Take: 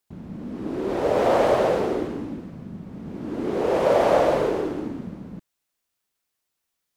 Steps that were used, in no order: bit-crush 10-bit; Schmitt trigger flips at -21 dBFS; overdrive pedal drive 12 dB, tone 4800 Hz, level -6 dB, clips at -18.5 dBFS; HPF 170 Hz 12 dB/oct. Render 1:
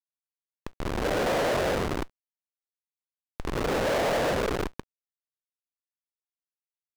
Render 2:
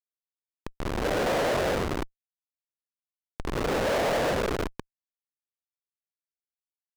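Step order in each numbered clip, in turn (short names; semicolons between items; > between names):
HPF > Schmitt trigger > bit-crush > overdrive pedal; bit-crush > HPF > Schmitt trigger > overdrive pedal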